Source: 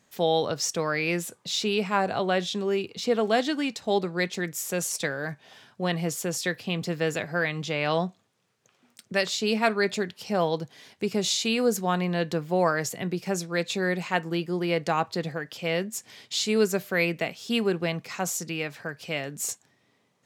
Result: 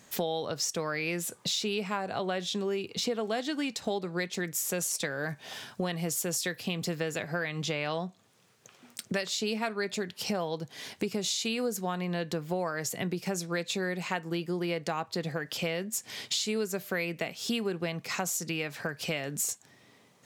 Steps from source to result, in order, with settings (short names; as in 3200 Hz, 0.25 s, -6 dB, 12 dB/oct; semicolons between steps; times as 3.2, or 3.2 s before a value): high shelf 6200 Hz +4.5 dB, from 5.3 s +9.5 dB, from 6.95 s +4.5 dB; compressor 6:1, threshold -37 dBFS, peak gain reduction 19 dB; gain +7.5 dB